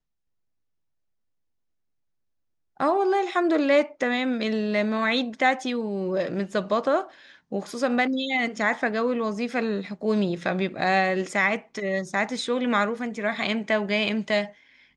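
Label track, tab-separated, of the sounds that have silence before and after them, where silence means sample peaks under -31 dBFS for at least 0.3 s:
2.800000	7.040000	sound
7.520000	14.460000	sound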